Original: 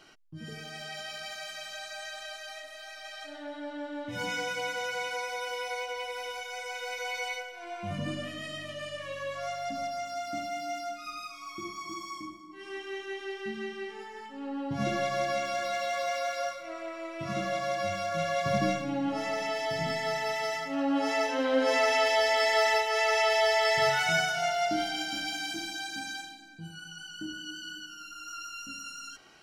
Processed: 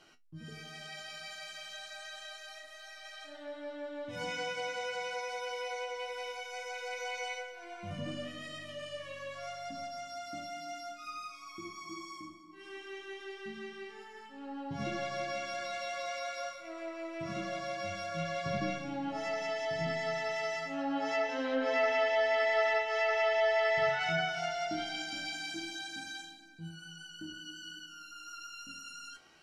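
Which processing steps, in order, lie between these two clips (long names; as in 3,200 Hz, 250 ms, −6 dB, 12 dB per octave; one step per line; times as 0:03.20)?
tuned comb filter 83 Hz, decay 0.16 s, harmonics all, mix 80%
treble cut that deepens with the level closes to 3,000 Hz, closed at −26.5 dBFS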